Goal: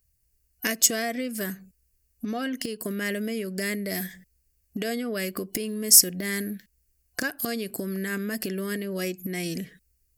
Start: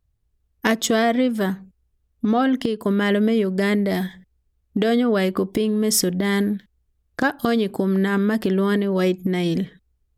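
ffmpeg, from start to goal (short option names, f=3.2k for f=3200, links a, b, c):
-af "superequalizer=9b=0.316:10b=0.562:13b=0.316,acompressor=threshold=-31dB:ratio=2,crystalizer=i=7:c=0,volume=-4dB"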